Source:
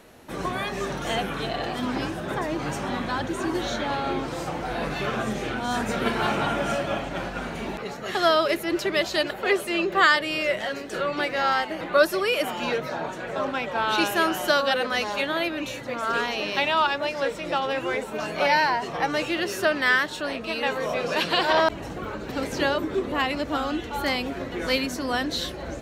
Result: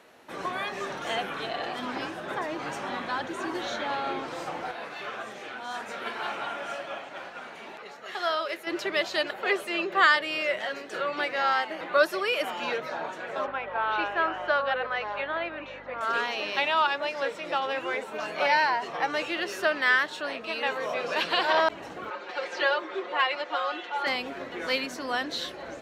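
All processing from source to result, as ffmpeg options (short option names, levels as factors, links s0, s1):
-filter_complex "[0:a]asettb=1/sr,asplit=3[s0][s1][s2];[s0]atrim=end=4.714[s3];[s1]atrim=start=4.71:end=8.67,asetpts=PTS-STARTPTS,afade=t=in:d=0.004:c=qsin,afade=t=out:st=3.956:d=0.004:c=qsin,lowshelf=f=290:g=-9,flanger=delay=5.4:depth=5.2:regen=-71:speed=1.9:shape=triangular[s4];[s2]atrim=start=8.666[s5];[s3][s4]acrossfade=d=0.004:c1=hsin:c2=qsin[s6];[s6][s5]acrossfade=d=0.004:c1=qsin:c2=hsin,asettb=1/sr,asplit=3[s7][s8][s9];[s7]atrim=end=13.464[s10];[s8]atrim=start=13.46:end=16.01,asetpts=PTS-STARTPTS,afade=t=in:d=0.004:c=qsin,afade=t=out:st=2.546:d=0.004:c=qsin,highpass=390,lowpass=2100,aeval=exprs='val(0)+0.0141*(sin(2*PI*50*n/s)+sin(2*PI*2*50*n/s)/2+sin(2*PI*3*50*n/s)/3+sin(2*PI*4*50*n/s)/4+sin(2*PI*5*50*n/s)/5)':c=same[s11];[s9]atrim=start=16.006[s12];[s10][s11]acrossfade=d=0.004:c1=hsin:c2=qsin[s13];[s13][s12]acrossfade=d=0.004:c1=qsin:c2=hsin,asettb=1/sr,asplit=3[s14][s15][s16];[s14]atrim=end=22.104[s17];[s15]atrim=start=22.1:end=24.07,asetpts=PTS-STARTPTS,afade=t=in:d=0.004:c=qsin,afade=t=out:st=1.966:d=0.004:c=qsin,highpass=510,lowpass=4800,aecho=1:1:5.6:0.93,atrim=end_sample=86877[s18];[s16]atrim=start=24.066[s19];[s17][s18]acrossfade=d=0.004:c1=hsin:c2=qsin[s20];[s20][s19]acrossfade=d=0.004:c1=qsin:c2=hsin,highpass=f=670:p=1,highshelf=f=5600:g=-11"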